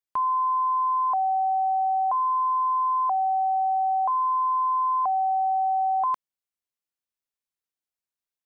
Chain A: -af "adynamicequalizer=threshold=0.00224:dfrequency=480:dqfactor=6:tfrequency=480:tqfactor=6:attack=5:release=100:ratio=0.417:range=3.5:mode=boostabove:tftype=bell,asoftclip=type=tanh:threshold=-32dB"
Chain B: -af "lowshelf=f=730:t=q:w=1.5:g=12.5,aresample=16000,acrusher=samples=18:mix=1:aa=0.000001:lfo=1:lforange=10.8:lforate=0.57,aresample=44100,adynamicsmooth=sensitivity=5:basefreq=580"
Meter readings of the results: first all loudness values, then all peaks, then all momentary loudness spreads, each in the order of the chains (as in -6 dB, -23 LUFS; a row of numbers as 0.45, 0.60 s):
-33.0, -22.5 LUFS; -32.0, -13.5 dBFS; 0, 9 LU